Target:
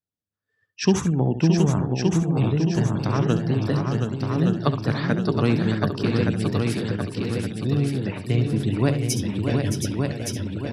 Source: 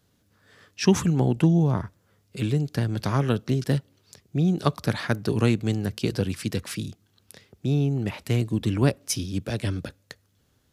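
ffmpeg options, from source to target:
-filter_complex "[0:a]afftdn=nr=29:nf=-41,asplit=2[a][b];[b]aecho=0:1:68|620|722:0.282|0.398|0.531[c];[a][c]amix=inputs=2:normalize=0,deesser=0.3,asplit=2[d][e];[e]aecho=0:1:1169|2338|3507|4676:0.596|0.208|0.073|0.0255[f];[d][f]amix=inputs=2:normalize=0"

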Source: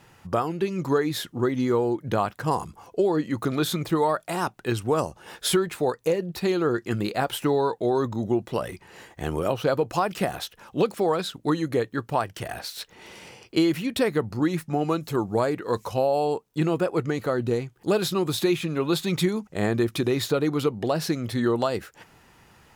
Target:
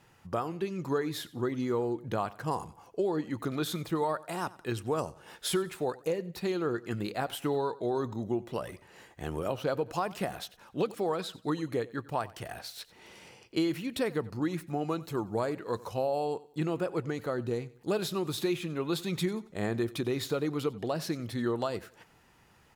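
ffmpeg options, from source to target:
-af "aecho=1:1:92|184|276:0.1|0.034|0.0116,volume=-7.5dB"

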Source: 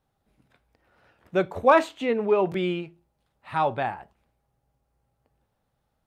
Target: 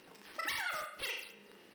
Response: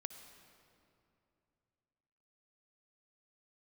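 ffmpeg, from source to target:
-filter_complex "[0:a]acompressor=mode=upward:threshold=-25dB:ratio=2.5,highpass=58,aecho=1:1:129|258|387|516|645|774|903|1032:0.473|0.274|0.159|0.0923|0.0535|0.0311|0.018|0.0104[a];[1:a]atrim=start_sample=2205,asetrate=57330,aresample=44100[b];[a][b]afir=irnorm=-1:irlink=0,acompressor=threshold=-27dB:ratio=4,acrusher=samples=13:mix=1:aa=0.000001:lfo=1:lforange=20.8:lforate=1.2,equalizer=f=100:t=o:w=0.33:g=4,equalizer=f=200:t=o:w=0.33:g=-5,equalizer=f=2k:t=o:w=0.33:g=-7,asetrate=153027,aresample=44100,volume=-6.5dB"

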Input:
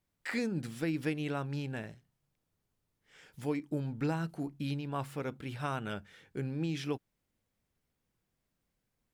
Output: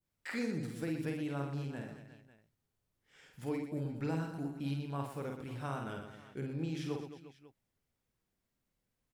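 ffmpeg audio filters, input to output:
-filter_complex "[0:a]asplit=2[a][b];[b]aecho=0:1:50|120|218|355.2|547.3:0.631|0.398|0.251|0.158|0.1[c];[a][c]amix=inputs=2:normalize=0,adynamicequalizer=threshold=0.00251:dfrequency=2700:dqfactor=0.71:tfrequency=2700:tqfactor=0.71:attack=5:release=100:ratio=0.375:range=3:mode=cutabove:tftype=bell,volume=-4.5dB"

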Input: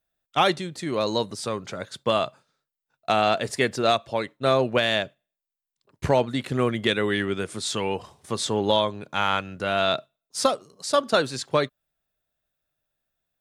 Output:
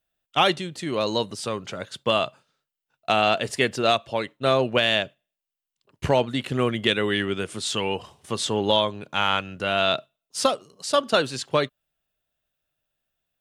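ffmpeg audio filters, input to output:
-af "equalizer=f=2.9k:w=4.4:g=7.5"

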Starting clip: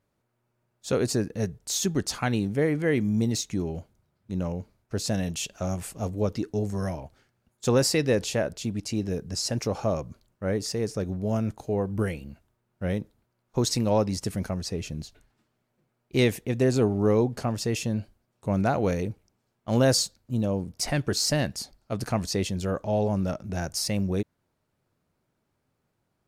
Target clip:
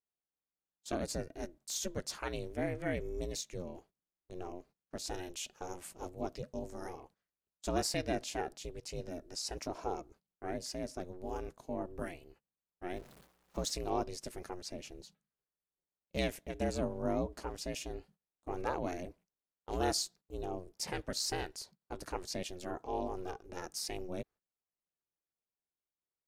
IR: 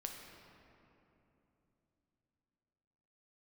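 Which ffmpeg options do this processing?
-filter_complex "[0:a]asettb=1/sr,asplit=3[a][b][c];[a]atrim=end=12.964[d];[b]atrim=start=12.96:end=13.71,asetpts=PTS-STARTPTS,afade=t=in:d=0.004:c=qsin,afade=t=out:st=0.746:d=0.004:c=qsin,aeval=exprs='val(0)+0.5*0.01*sgn(val(0))':c=same[e];[c]atrim=start=13.706[f];[d][e]acrossfade=d=0.004:c1=hsin:c2=qsin[g];[g][f]acrossfade=d=0.004:c1=qsin:c2=hsin,agate=range=-16dB:threshold=-46dB:ratio=16:detection=peak,equalizer=f=83:w=0.93:g=-15,aeval=exprs='val(0)*sin(2*PI*180*n/s)':c=same,volume=-7dB"

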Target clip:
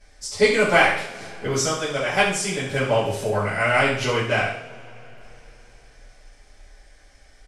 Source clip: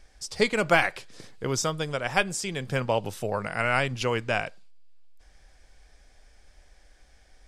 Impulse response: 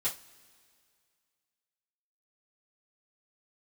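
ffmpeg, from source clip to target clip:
-filter_complex "[0:a]asplit=2[a][b];[b]aeval=exprs='clip(val(0),-1,0.0596)':c=same,volume=-3.5dB[c];[a][c]amix=inputs=2:normalize=0,aecho=1:1:68|136|204|272|340:0.355|0.149|0.0626|0.0263|0.011[d];[1:a]atrim=start_sample=2205,asetrate=24696,aresample=44100[e];[d][e]afir=irnorm=-1:irlink=0,volume=-8dB"

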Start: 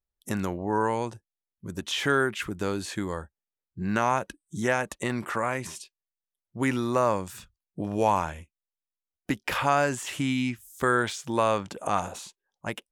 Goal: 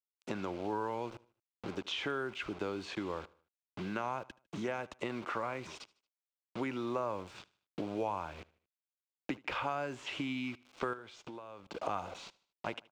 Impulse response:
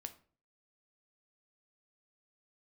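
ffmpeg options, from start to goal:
-filter_complex "[0:a]acrusher=bits=6:mix=0:aa=0.000001,acrossover=split=160|7800[a][b][c];[a]acompressor=threshold=-48dB:ratio=4[d];[b]acompressor=threshold=-38dB:ratio=4[e];[c]acompressor=threshold=-55dB:ratio=4[f];[d][e][f]amix=inputs=3:normalize=0,firequalizer=gain_entry='entry(160,0);entry(320,8);entry(2400,9);entry(11000,-19)':delay=0.05:min_phase=1,asettb=1/sr,asplit=3[g][h][i];[g]atrim=end=10.934[j];[h]atrim=start=10.93:end=11.7,asetpts=PTS-STARTPTS,afade=t=in:d=0.004:c=qsin,afade=t=out:st=0.766:d=0.004:c=qsin,acompressor=threshold=-40dB:ratio=6[k];[i]atrim=start=11.696[l];[j][k]acrossfade=d=0.004:c1=hsin:c2=qsin[m];[m][l]acrossfade=d=0.004:c1=qsin:c2=hsin,equalizer=f=1.8k:t=o:w=0.27:g=-9.5,aecho=1:1:76|152|228:0.075|0.0337|0.0152,volume=-5dB"

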